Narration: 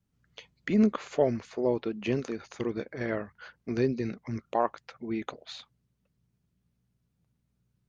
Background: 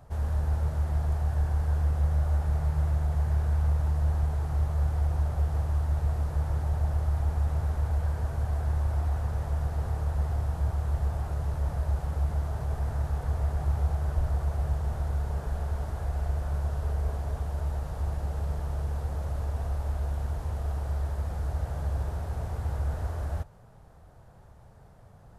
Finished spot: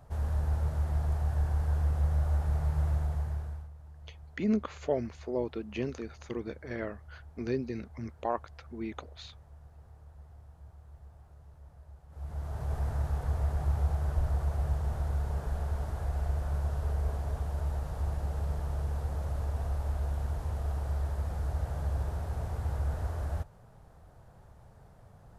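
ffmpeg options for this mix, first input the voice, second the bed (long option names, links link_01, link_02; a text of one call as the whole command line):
ffmpeg -i stem1.wav -i stem2.wav -filter_complex "[0:a]adelay=3700,volume=-5dB[link_01];[1:a]volume=19dB,afade=type=out:start_time=2.94:duration=0.75:silence=0.0891251,afade=type=in:start_time=12.09:duration=0.67:silence=0.0841395[link_02];[link_01][link_02]amix=inputs=2:normalize=0" out.wav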